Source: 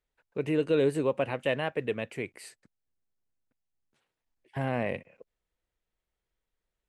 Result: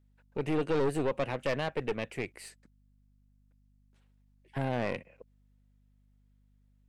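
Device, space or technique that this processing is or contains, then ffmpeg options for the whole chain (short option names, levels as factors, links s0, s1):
valve amplifier with mains hum: -af "aeval=exprs='(tanh(22.4*val(0)+0.6)-tanh(0.6))/22.4':c=same,aeval=exprs='val(0)+0.000447*(sin(2*PI*50*n/s)+sin(2*PI*2*50*n/s)/2+sin(2*PI*3*50*n/s)/3+sin(2*PI*4*50*n/s)/4+sin(2*PI*5*50*n/s)/5)':c=same,volume=1.33"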